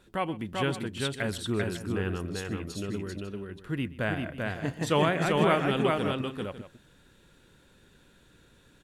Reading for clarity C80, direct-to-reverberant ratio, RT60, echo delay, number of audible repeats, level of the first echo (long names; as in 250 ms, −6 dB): no reverb audible, no reverb audible, no reverb audible, 127 ms, 3, −19.5 dB